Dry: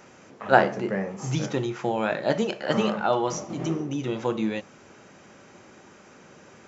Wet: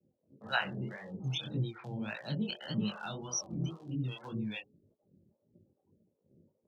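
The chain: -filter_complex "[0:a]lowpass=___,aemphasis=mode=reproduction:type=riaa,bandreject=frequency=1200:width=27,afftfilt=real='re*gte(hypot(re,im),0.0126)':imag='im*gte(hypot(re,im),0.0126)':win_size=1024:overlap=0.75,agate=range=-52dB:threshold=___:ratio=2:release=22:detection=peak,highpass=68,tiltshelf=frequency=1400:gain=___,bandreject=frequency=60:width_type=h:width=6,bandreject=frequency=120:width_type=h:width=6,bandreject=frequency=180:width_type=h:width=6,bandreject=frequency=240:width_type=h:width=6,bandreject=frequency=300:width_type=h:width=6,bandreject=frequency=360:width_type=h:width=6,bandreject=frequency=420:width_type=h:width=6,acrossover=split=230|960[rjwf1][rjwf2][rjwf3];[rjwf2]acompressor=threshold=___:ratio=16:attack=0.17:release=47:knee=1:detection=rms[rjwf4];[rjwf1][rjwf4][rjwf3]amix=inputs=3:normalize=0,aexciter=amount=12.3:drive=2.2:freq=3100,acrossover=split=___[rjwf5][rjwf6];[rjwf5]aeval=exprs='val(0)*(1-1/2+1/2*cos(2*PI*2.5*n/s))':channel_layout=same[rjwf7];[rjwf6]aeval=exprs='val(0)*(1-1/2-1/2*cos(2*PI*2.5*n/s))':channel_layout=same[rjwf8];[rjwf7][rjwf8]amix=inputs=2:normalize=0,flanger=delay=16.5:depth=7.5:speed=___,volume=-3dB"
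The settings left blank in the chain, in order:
5500, -39dB, -3, -34dB, 560, 1.8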